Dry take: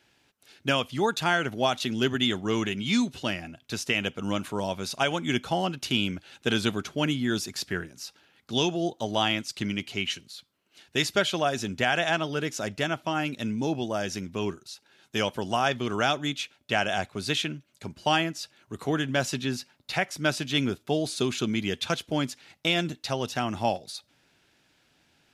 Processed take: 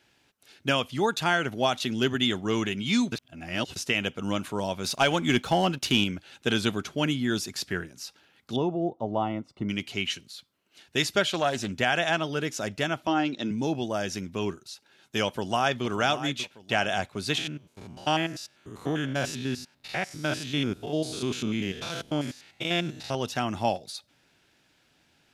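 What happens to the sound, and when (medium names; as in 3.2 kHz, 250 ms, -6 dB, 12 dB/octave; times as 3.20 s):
3.12–3.76 s: reverse
4.84–6.04 s: waveshaping leveller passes 1
8.56–9.69 s: Savitzky-Golay filter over 65 samples
11.23–11.72 s: loudspeaker Doppler distortion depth 0.23 ms
13.07–13.51 s: cabinet simulation 170–6200 Hz, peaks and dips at 330 Hz +8 dB, 780 Hz +4 dB, 2.4 kHz -4 dB, 3.8 kHz +5 dB
15.25–15.84 s: echo throw 590 ms, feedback 40%, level -12 dB
17.38–23.15 s: spectrogram pixelated in time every 100 ms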